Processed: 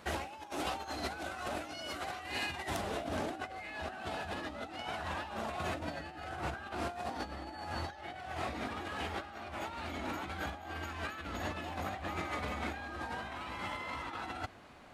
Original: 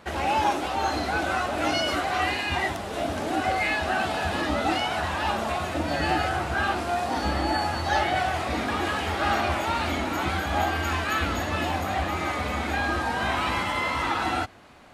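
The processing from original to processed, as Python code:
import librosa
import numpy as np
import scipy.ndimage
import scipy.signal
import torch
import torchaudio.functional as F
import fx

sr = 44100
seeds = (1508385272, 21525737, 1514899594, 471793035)

y = fx.over_compress(x, sr, threshold_db=-30.0, ratio=-0.5)
y = fx.high_shelf(y, sr, hz=4700.0, db=fx.steps((0.0, 5.5), (2.8, -3.0)))
y = y * librosa.db_to_amplitude(-9.0)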